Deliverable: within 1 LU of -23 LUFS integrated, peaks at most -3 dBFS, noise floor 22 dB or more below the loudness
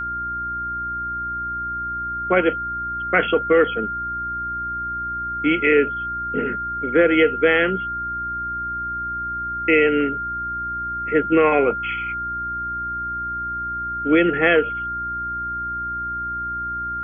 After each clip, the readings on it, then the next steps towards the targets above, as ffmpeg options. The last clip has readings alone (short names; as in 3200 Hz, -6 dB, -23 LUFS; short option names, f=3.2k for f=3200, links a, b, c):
hum 60 Hz; harmonics up to 360 Hz; hum level -37 dBFS; steady tone 1400 Hz; tone level -24 dBFS; loudness -21.5 LUFS; peak -3.5 dBFS; loudness target -23.0 LUFS
-> -af "bandreject=f=60:t=h:w=4,bandreject=f=120:t=h:w=4,bandreject=f=180:t=h:w=4,bandreject=f=240:t=h:w=4,bandreject=f=300:t=h:w=4,bandreject=f=360:t=h:w=4"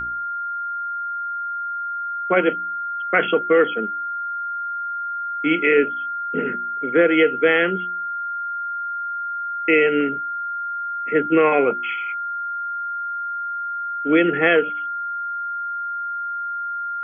hum none; steady tone 1400 Hz; tone level -24 dBFS
-> -af "bandreject=f=1.4k:w=30"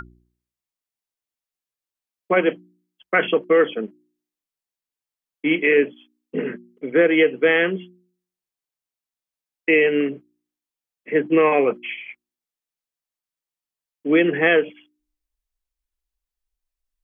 steady tone none; loudness -19.5 LUFS; peak -4.0 dBFS; loudness target -23.0 LUFS
-> -af "volume=-3.5dB"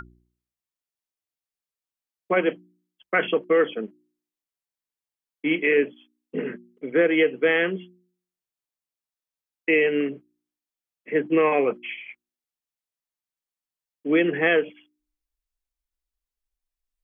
loudness -23.0 LUFS; peak -7.5 dBFS; noise floor -92 dBFS